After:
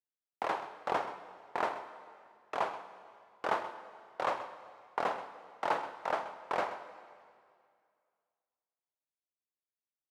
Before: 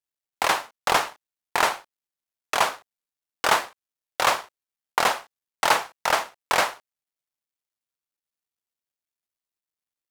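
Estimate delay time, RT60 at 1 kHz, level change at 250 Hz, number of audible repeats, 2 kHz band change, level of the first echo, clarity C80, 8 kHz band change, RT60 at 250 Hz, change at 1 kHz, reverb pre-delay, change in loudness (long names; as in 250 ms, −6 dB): 130 ms, 2.2 s, −7.0 dB, 1, −15.5 dB, −14.0 dB, 10.5 dB, below −25 dB, 2.2 s, −10.5 dB, 8 ms, −12.5 dB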